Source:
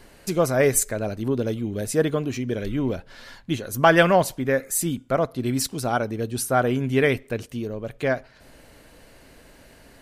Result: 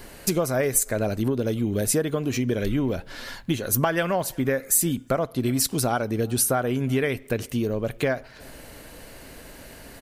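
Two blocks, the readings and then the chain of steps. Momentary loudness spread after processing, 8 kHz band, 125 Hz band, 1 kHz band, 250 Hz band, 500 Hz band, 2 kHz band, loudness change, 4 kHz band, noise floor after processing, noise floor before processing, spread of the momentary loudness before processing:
22 LU, +3.0 dB, 0.0 dB, -5.0 dB, 0.0 dB, -3.0 dB, -5.0 dB, -1.0 dB, 0.0 dB, -46 dBFS, -52 dBFS, 11 LU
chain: compression 10:1, threshold -26 dBFS, peak gain reduction 15.5 dB; treble shelf 12 kHz +11 dB; speakerphone echo 360 ms, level -27 dB; trim +6 dB

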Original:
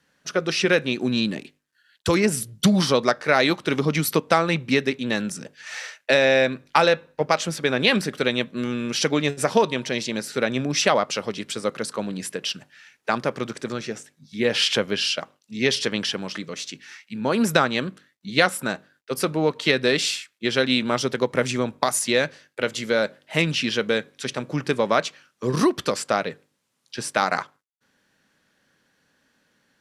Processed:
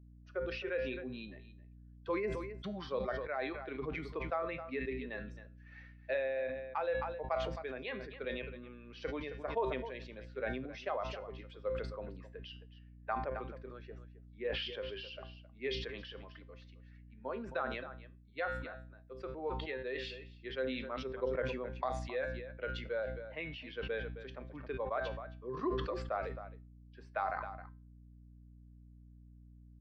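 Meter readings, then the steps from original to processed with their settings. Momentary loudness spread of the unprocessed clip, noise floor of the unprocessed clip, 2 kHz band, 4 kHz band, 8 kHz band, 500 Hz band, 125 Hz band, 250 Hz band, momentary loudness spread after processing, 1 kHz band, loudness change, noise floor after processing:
12 LU, -70 dBFS, -18.0 dB, -22.5 dB, under -35 dB, -14.5 dB, -16.5 dB, -20.5 dB, 19 LU, -15.0 dB, -17.0 dB, -57 dBFS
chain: expander on every frequency bin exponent 1.5; three-band isolator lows -22 dB, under 370 Hz, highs -18 dB, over 4.5 kHz; feedback comb 130 Hz, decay 0.34 s, harmonics all, mix 60%; hum 60 Hz, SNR 21 dB; gain riding within 4 dB 0.5 s; tape spacing loss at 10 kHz 38 dB; on a send: delay 266 ms -15.5 dB; on the sum: decay stretcher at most 42 dB/s; trim -3.5 dB

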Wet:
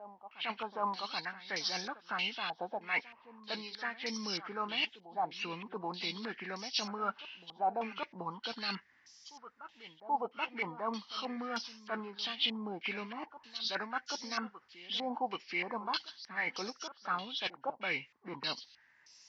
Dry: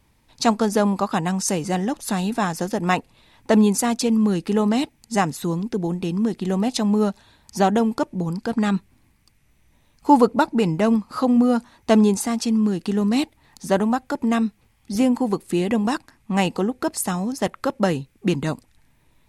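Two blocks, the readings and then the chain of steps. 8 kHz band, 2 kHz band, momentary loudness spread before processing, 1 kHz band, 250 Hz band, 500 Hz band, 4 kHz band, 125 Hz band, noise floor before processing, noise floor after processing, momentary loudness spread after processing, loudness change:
-20.5 dB, -6.0 dB, 8 LU, -12.5 dB, -26.0 dB, -19.5 dB, -3.0 dB, -26.5 dB, -61 dBFS, -66 dBFS, 11 LU, -16.0 dB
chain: knee-point frequency compression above 1.4 kHz 1.5:1; differentiator; reverse; compression 16:1, threshold -45 dBFS, peak gain reduction 22.5 dB; reverse; reverse echo 781 ms -16 dB; step-sequenced low-pass 3.2 Hz 780–5500 Hz; trim +8.5 dB

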